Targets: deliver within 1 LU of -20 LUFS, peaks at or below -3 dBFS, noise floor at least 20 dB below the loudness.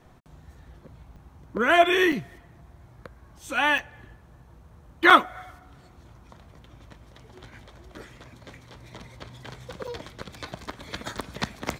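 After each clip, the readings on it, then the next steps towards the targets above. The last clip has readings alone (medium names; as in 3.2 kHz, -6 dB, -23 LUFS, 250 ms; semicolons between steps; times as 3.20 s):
dropouts 6; longest dropout 5.5 ms; loudness -22.5 LUFS; peak level -2.0 dBFS; loudness target -20.0 LUFS
-> interpolate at 1.16/2.12/3.78/5.10/9.87/11.18 s, 5.5 ms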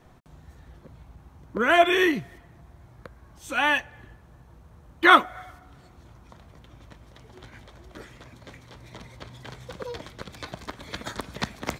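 dropouts 0; loudness -22.5 LUFS; peak level -2.0 dBFS; loudness target -20.0 LUFS
-> trim +2.5 dB; peak limiter -3 dBFS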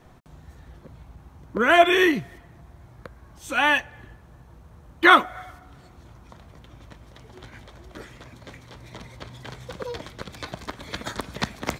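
loudness -20.5 LUFS; peak level -3.0 dBFS; noise floor -51 dBFS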